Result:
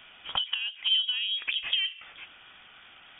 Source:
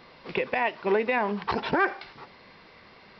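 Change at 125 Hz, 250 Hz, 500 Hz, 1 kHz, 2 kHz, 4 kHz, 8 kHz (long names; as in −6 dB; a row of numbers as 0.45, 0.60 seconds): below −15 dB, below −30 dB, below −30 dB, −17.5 dB, −6.0 dB, +17.5 dB, can't be measured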